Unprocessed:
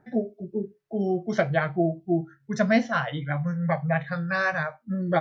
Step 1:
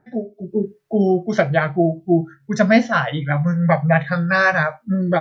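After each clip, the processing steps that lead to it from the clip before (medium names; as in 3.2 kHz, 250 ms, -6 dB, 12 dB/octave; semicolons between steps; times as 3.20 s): level rider gain up to 11.5 dB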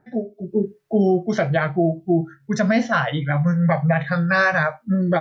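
peak limiter -8.5 dBFS, peak gain reduction 7 dB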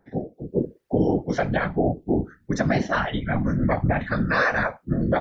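whisper effect; trim -3.5 dB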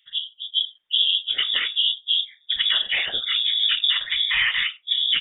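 frequency inversion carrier 3.6 kHz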